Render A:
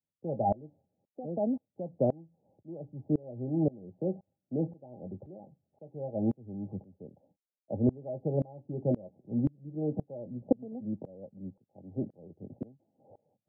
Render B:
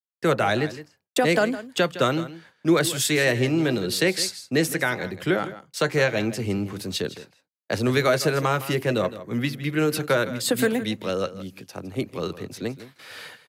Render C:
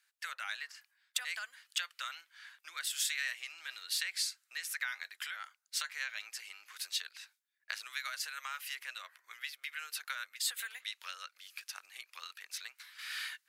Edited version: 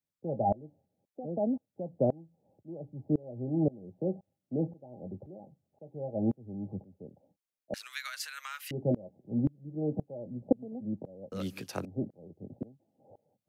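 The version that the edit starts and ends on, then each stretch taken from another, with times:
A
7.74–8.71 s: from C
11.32–11.85 s: from B

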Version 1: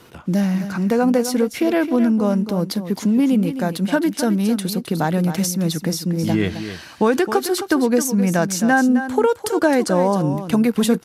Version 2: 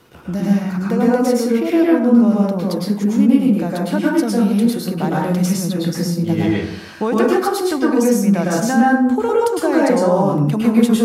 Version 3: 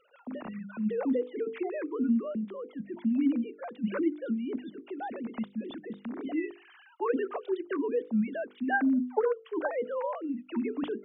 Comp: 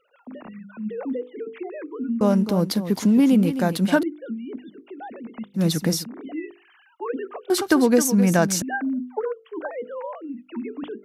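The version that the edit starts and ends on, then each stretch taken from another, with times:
3
2.21–4.03 s: from 1
5.57–6.04 s: from 1, crossfade 0.06 s
7.50–8.62 s: from 1
not used: 2

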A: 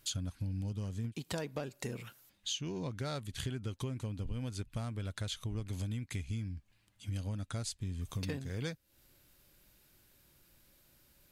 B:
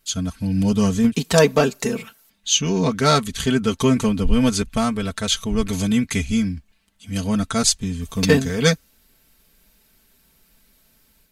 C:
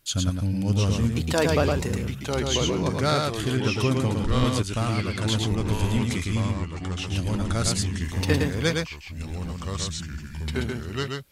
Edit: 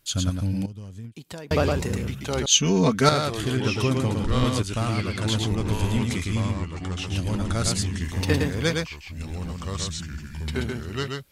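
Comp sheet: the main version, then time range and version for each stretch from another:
C
0.66–1.51 s: from A
2.46–3.09 s: from B

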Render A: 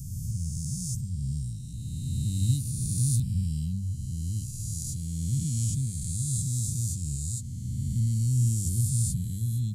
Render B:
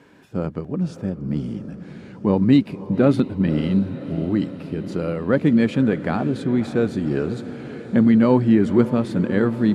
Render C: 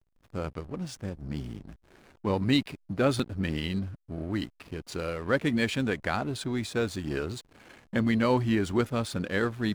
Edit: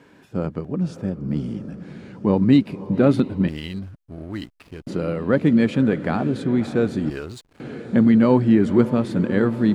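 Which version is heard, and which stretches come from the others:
B
3.48–4.87 s: from C
7.10–7.60 s: from C
not used: A

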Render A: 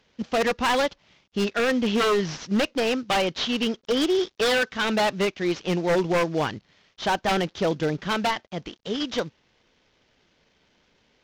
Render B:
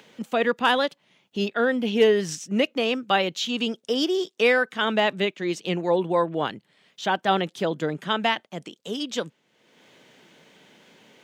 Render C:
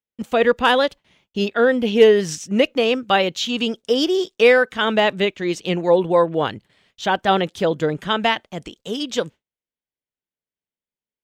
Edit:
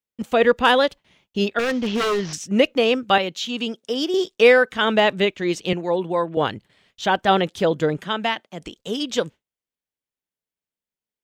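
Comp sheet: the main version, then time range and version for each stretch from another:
C
1.59–2.33 s: from A
3.18–4.14 s: from B
5.73–6.37 s: from B
8.03–8.62 s: from B

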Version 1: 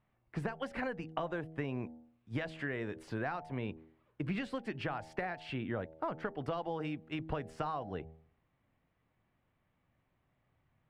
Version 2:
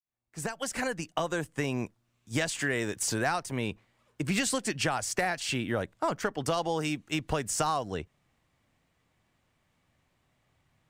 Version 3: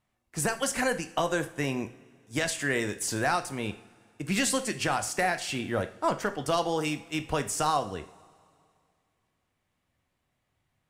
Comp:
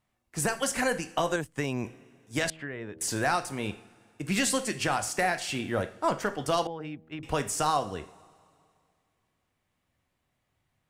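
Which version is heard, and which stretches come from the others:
3
1.36–1.84 s: from 2
2.50–3.01 s: from 1
6.67–7.23 s: from 1

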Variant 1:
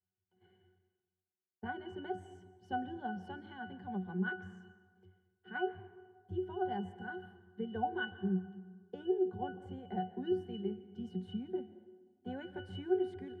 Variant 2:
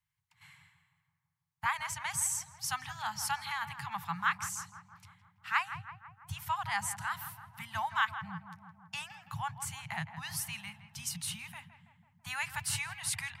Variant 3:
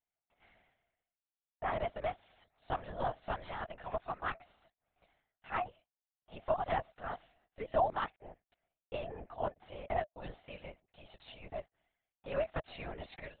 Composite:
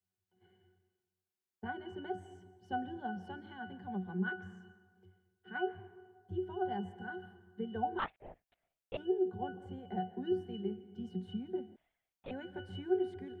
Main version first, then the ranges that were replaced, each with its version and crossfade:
1
7.99–8.97 s: from 3
11.76–12.31 s: from 3
not used: 2

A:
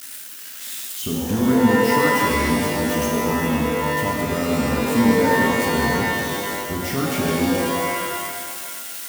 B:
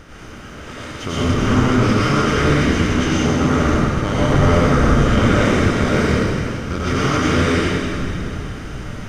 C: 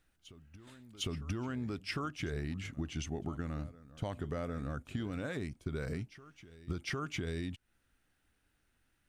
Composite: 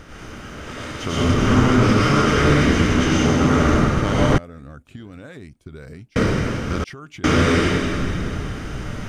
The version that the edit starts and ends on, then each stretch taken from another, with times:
B
4.38–6.16 s: from C
6.84–7.24 s: from C
not used: A

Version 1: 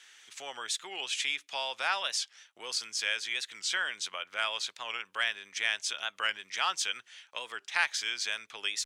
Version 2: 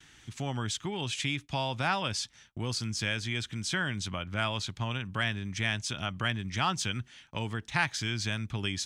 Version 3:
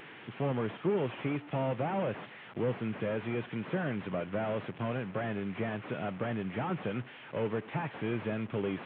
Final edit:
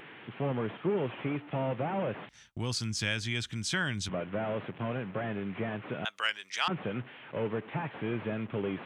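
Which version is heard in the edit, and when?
3
2.29–4.09 s: from 2
6.05–6.68 s: from 1

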